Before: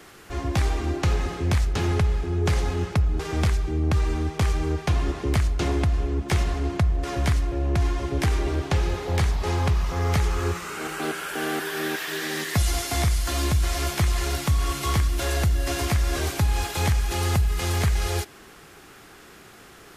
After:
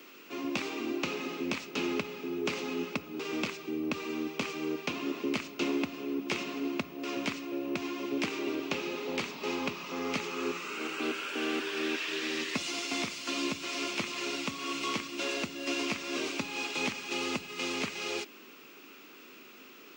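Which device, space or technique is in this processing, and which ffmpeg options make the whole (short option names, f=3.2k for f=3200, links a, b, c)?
old television with a line whistle: -af "highpass=f=220:w=0.5412,highpass=f=220:w=1.3066,equalizer=f=260:t=q:w=4:g=7,equalizer=f=750:t=q:w=4:g=-9,equalizer=f=1.7k:t=q:w=4:g=-7,equalizer=f=2.6k:t=q:w=4:g=10,lowpass=f=6.8k:w=0.5412,lowpass=f=6.8k:w=1.3066,aeval=exprs='val(0)+0.00251*sin(2*PI*15625*n/s)':c=same,volume=-5dB"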